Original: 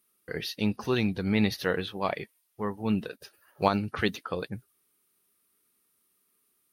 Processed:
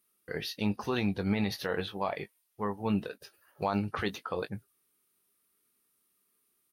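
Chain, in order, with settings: dynamic bell 830 Hz, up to +7 dB, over -42 dBFS, Q 1.1; peak limiter -16.5 dBFS, peak gain reduction 12 dB; doubling 20 ms -10.5 dB; trim -3 dB

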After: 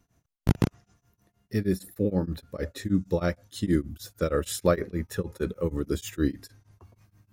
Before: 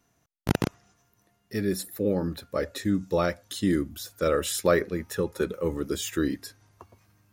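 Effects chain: bass shelf 210 Hz +11.5 dB; tremolo of two beating tones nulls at 6.4 Hz; trim -1.5 dB

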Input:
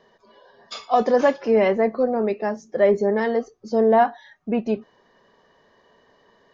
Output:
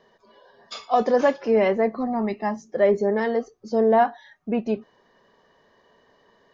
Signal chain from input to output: 1.96–2.62 s: comb 1 ms, depth 79%; trim -1.5 dB

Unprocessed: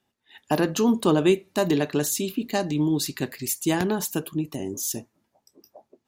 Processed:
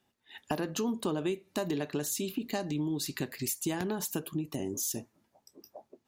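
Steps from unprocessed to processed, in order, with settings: compression 4:1, threshold -31 dBFS, peak gain reduction 14 dB

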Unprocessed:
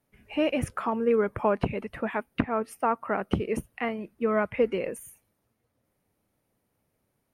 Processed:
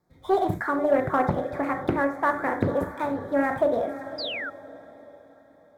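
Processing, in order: dead-time distortion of 0.053 ms; Butterworth band-stop 2.2 kHz, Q 1.6; tape speed +27%; treble shelf 7.4 kHz -11 dB; echo that smears into a reverb 548 ms, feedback 41%, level -13.5 dB; on a send at -3.5 dB: reverberation, pre-delay 3 ms; on the sum: dynamic bell 4.6 kHz, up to -7 dB, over -52 dBFS, Q 1.1; painted sound fall, 4.18–4.50 s, 1.3–5.1 kHz -35 dBFS; in parallel at -9.5 dB: saturation -21 dBFS, distortion -13 dB; on the sum: loudspeaker Doppler distortion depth 0.47 ms

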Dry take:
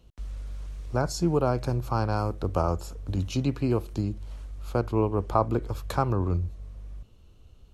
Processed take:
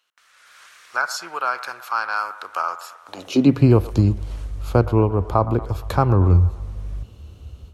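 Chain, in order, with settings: dynamic bell 7.5 kHz, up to -6 dB, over -54 dBFS, Q 0.94; level rider gain up to 12.5 dB; high-pass sweep 1.5 kHz -> 68 Hz, 2.99–3.75 s; feedback echo behind a band-pass 116 ms, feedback 56%, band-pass 990 Hz, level -14.5 dB; trim -1 dB

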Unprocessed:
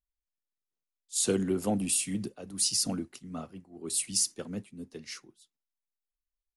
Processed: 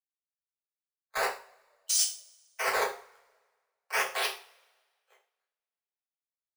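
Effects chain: local Wiener filter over 41 samples; spectral gate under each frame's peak -25 dB strong; elliptic high-pass 2.6 kHz, stop band 40 dB; treble shelf 3.7 kHz +9.5 dB; compressor with a negative ratio -24 dBFS, ratio -0.5; decimation with a swept rate 13×, swing 160% 0.38 Hz; saturation -25 dBFS, distortion -8 dB; frequency shift +380 Hz; hard clipper -23 dBFS, distortion -21 dB; two-slope reverb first 0.41 s, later 2.7 s, from -27 dB, DRR -2 dB; three bands expanded up and down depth 40%; trim -2 dB

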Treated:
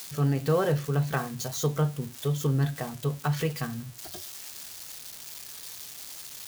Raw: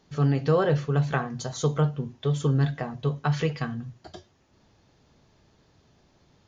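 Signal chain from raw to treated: zero-crossing glitches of -27 dBFS; trim -2.5 dB

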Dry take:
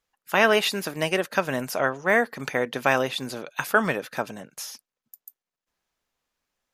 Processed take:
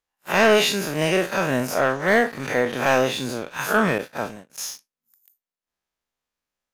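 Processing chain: spectral blur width 93 ms; dynamic bell 6.6 kHz, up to +5 dB, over -58 dBFS, Q 7; waveshaping leveller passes 2; 3.98–4.50 s: expander -25 dBFS

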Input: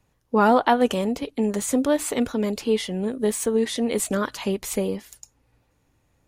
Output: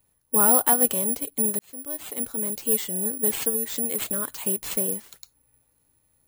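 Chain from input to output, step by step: 3.49–4.34 s: compression, threshold -22 dBFS, peak gain reduction 6 dB; careless resampling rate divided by 4×, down none, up zero stuff; 1.59–2.79 s: fade in; trim -7 dB

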